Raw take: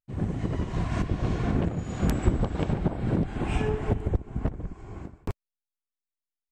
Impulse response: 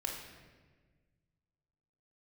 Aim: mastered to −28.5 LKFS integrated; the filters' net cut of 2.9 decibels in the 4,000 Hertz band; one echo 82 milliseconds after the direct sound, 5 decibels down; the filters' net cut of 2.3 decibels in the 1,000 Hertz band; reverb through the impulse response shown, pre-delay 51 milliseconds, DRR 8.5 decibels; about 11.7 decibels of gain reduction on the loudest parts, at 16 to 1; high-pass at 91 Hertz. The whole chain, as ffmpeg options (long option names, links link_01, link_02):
-filter_complex "[0:a]highpass=91,equalizer=frequency=1000:width_type=o:gain=-3,equalizer=frequency=4000:width_type=o:gain=-4,acompressor=threshold=-32dB:ratio=16,aecho=1:1:82:0.562,asplit=2[link_01][link_02];[1:a]atrim=start_sample=2205,adelay=51[link_03];[link_02][link_03]afir=irnorm=-1:irlink=0,volume=-10dB[link_04];[link_01][link_04]amix=inputs=2:normalize=0,volume=8dB"